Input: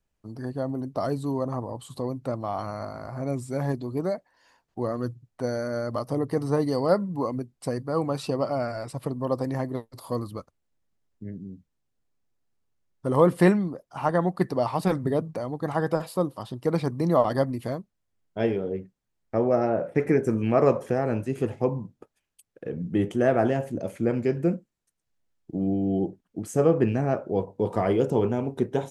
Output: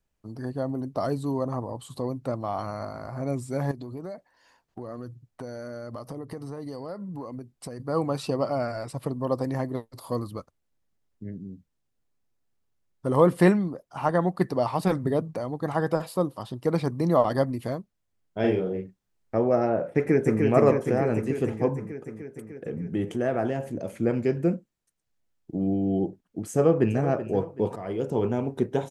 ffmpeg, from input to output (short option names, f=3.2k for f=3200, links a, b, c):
-filter_complex "[0:a]asettb=1/sr,asplit=3[a][b][c];[a]atrim=end=3.714[d];[b]atrim=start=3.71:end=7.8,asetpts=PTS-STARTPTS,afade=t=in:d=0.004:c=qsin,afade=t=out:st=4.086:d=0.004:c=qsin,acompressor=threshold=-33dB:ratio=6:attack=3.2:release=140:knee=1:detection=peak[e];[c]atrim=start=7.796[f];[d][e]acrossfade=d=0.004:c1=hsin:c2=qsin[g];[g][f]acrossfade=d=0.004:c1=qsin:c2=hsin,asettb=1/sr,asplit=3[h][i][j];[h]atrim=end=18.404[k];[i]atrim=start=18.4:end=19.37,asetpts=PTS-STARTPTS,afade=t=in:d=0.004:c=qsin,afade=t=out:st=0.966:d=0.004:c=qsin,asplit=2[l][m];[m]adelay=38,volume=-2dB[n];[l][n]amix=inputs=2:normalize=0,atrim=end_sample=42777[o];[j]atrim=start=19.366[p];[k][o]acrossfade=d=0.004:c1=hsin:c2=qsin[q];[q][p]acrossfade=d=0.004:c1=qsin:c2=hsin,asplit=2[r][s];[s]afade=t=in:st=19.9:d=0.01,afade=t=out:st=20.42:d=0.01,aecho=0:1:300|600|900|1200|1500|1800|2100|2400|2700|3000|3300|3600:0.668344|0.501258|0.375943|0.281958|0.211468|0.158601|0.118951|0.0892131|0.0669099|0.0501824|0.0376368|0.0282276[t];[r][t]amix=inputs=2:normalize=0,asettb=1/sr,asplit=3[u][v][w];[u]atrim=end=21.754[x];[v]atrim=start=21.75:end=23.92,asetpts=PTS-STARTPTS,afade=t=in:d=0.004:c=qsin,afade=t=out:st=2.166:d=0.004:c=qsin,acompressor=threshold=-29dB:ratio=1.5:attack=3.2:release=140:knee=1:detection=peak[y];[w]atrim=start=23.916[z];[x][y]acrossfade=d=0.004:c1=hsin:c2=qsin[aa];[aa][z]acrossfade=d=0.004:c1=qsin:c2=hsin,asplit=2[ab][ac];[ac]afade=t=in:st=26.52:d=0.01,afade=t=out:st=27.06:d=0.01,aecho=0:1:380|760|1140|1520:0.211349|0.0845396|0.0338158|0.0135263[ad];[ab][ad]amix=inputs=2:normalize=0,asplit=2[ae][af];[ae]atrim=end=27.76,asetpts=PTS-STARTPTS,afade=t=out:st=27.756:d=0.004:c=hsin:silence=0.16788[ag];[af]atrim=start=27.76,asetpts=PTS-STARTPTS,afade=t=in:d=0.6:silence=0.16788[ah];[ag][ah]concat=n=2:v=0:a=1"